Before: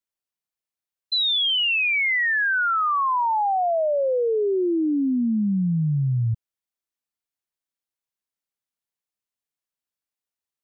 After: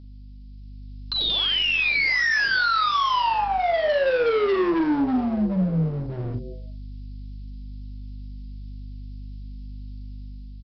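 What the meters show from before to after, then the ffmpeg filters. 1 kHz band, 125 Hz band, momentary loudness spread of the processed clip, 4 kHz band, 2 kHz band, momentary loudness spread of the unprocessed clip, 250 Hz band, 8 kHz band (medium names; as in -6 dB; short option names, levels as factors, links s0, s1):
0.0 dB, -3.5 dB, 21 LU, -0.5 dB, 0.0 dB, 4 LU, -0.5 dB, no reading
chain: -filter_complex "[0:a]equalizer=f=125:t=o:w=0.33:g=6,equalizer=f=400:t=o:w=0.33:g=4,equalizer=f=800:t=o:w=0.33:g=-12,aexciter=amount=6.8:drive=4.3:freq=2300,bass=f=250:g=-11,treble=f=4000:g=9,bandreject=f=68.59:t=h:w=4,bandreject=f=137.18:t=h:w=4,bandreject=f=205.77:t=h:w=4,bandreject=f=274.36:t=h:w=4,bandreject=f=342.95:t=h:w=4,bandreject=f=411.54:t=h:w=4,bandreject=f=480.13:t=h:w=4,bandreject=f=548.72:t=h:w=4,bandreject=f=617.31:t=h:w=4,bandreject=f=685.9:t=h:w=4,bandreject=f=754.49:t=h:w=4,acrossover=split=160[s0][s1];[s1]acompressor=threshold=0.141:ratio=6[s2];[s0][s2]amix=inputs=2:normalize=0,asplit=2[s3][s4];[s4]asplit=4[s5][s6][s7][s8];[s5]adelay=89,afreqshift=130,volume=0.126[s9];[s6]adelay=178,afreqshift=260,volume=0.0543[s10];[s7]adelay=267,afreqshift=390,volume=0.0232[s11];[s8]adelay=356,afreqshift=520,volume=0.01[s12];[s9][s10][s11][s12]amix=inputs=4:normalize=0[s13];[s3][s13]amix=inputs=2:normalize=0,aeval=exprs='0.299*sin(PI/2*2.82*val(0)/0.299)':c=same,aeval=exprs='val(0)+0.0224*(sin(2*PI*50*n/s)+sin(2*PI*2*50*n/s)/2+sin(2*PI*3*50*n/s)/3+sin(2*PI*4*50*n/s)/4+sin(2*PI*5*50*n/s)/5)':c=same,aresample=11025,asoftclip=type=hard:threshold=0.126,aresample=44100,asplit=2[s14][s15];[s15]adelay=43,volume=0.398[s16];[s14][s16]amix=inputs=2:normalize=0,flanger=delay=3.6:depth=3.6:regen=-74:speed=0.5:shape=sinusoidal,dynaudnorm=f=190:g=9:m=2,volume=0.562"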